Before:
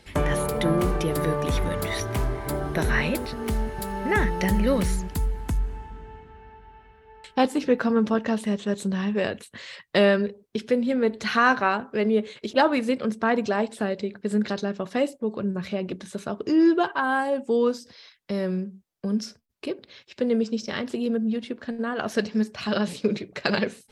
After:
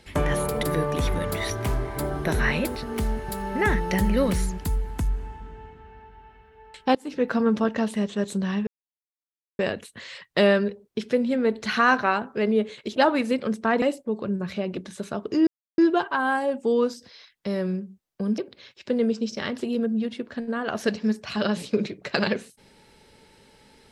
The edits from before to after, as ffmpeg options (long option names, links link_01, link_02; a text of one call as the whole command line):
ffmpeg -i in.wav -filter_complex "[0:a]asplit=7[link_01][link_02][link_03][link_04][link_05][link_06][link_07];[link_01]atrim=end=0.632[link_08];[link_02]atrim=start=1.128:end=7.45,asetpts=PTS-STARTPTS,afade=type=out:start_time=6.318:duration=0.004:curve=hsin:silence=0.0891251[link_09];[link_03]atrim=start=7.45:end=9.17,asetpts=PTS-STARTPTS,afade=type=in:duration=0.4:silence=0.0891251,afade=type=out:start_time=1.716:duration=0.004:curve=hsin,apad=pad_dur=0.92[link_10];[link_04]atrim=start=9.17:end=13.402,asetpts=PTS-STARTPTS,afade=type=in:duration=0.004:curve=hsin[link_11];[link_05]atrim=start=14.968:end=16.62,asetpts=PTS-STARTPTS,afade=type=out:start_time=1.648:duration=0.004:curve=hsin,apad=pad_dur=0.31[link_12];[link_06]atrim=start=16.62:end=19.222,asetpts=PTS-STARTPTS,afade=type=in:duration=0.004:curve=hsin[link_13];[link_07]atrim=start=19.688[link_14];[link_09][link_10][link_11]concat=n=3:v=0:a=1[link_15];[link_08][link_15]acrossfade=duration=0.004:curve1=hsin:curve2=hsin[link_16];[link_12][link_13]concat=n=2:v=0:a=1[link_17];[link_16][link_17]acrossfade=duration=0.004:curve1=hsin:curve2=hsin[link_18];[link_18][link_14]acrossfade=duration=0.004:curve1=hsin:curve2=hsin" out.wav